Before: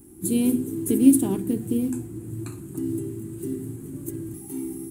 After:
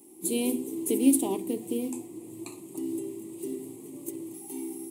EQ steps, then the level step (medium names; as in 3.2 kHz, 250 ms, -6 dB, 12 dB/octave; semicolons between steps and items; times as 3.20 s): high-pass 470 Hz 12 dB/octave; Butterworth band-stop 1.5 kHz, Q 1.4; treble shelf 6.4 kHz -6.5 dB; +3.5 dB